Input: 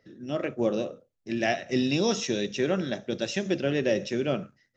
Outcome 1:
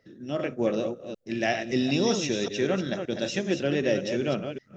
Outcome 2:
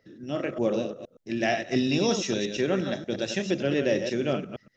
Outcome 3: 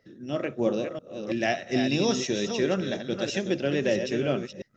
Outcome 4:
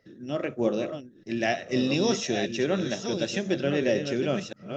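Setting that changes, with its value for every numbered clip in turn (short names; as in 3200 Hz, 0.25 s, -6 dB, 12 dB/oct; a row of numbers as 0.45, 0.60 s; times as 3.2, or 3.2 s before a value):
reverse delay, time: 0.191, 0.117, 0.33, 0.647 s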